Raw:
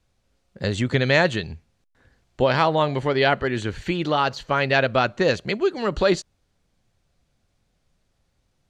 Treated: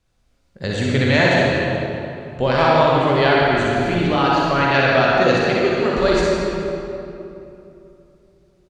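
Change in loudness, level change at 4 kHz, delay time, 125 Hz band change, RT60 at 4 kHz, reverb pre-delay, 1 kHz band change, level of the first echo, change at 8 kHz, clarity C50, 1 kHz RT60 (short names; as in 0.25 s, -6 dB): +4.5 dB, +4.0 dB, 61 ms, +5.0 dB, 1.7 s, 38 ms, +6.0 dB, -5.0 dB, n/a, -4.5 dB, 2.7 s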